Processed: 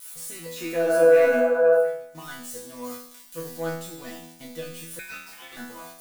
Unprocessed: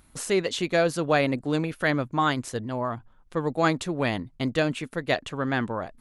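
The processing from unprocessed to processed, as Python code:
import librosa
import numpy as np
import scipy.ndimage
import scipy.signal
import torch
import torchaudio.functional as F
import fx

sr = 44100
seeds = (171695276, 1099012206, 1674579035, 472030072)

y = x + 0.5 * 10.0 ** (-19.0 / 20.0) * np.diff(np.sign(x), prepend=np.sign(x[:1]))
y = fx.leveller(y, sr, passes=2)
y = fx.spec_box(y, sr, start_s=0.56, length_s=1.31, low_hz=210.0, high_hz=2900.0, gain_db=11)
y = fx.tone_stack(y, sr, knobs='6-0-2', at=(1.4, 2.15))
y = fx.spec_repair(y, sr, seeds[0], start_s=0.87, length_s=0.89, low_hz=450.0, high_hz=1700.0, source='before')
y = fx.high_shelf(y, sr, hz=4100.0, db=7.5, at=(2.84, 3.56))
y = fx.resonator_bank(y, sr, root=52, chord='fifth', decay_s=0.72)
y = fx.ring_mod(y, sr, carrier_hz=2000.0, at=(4.99, 5.57))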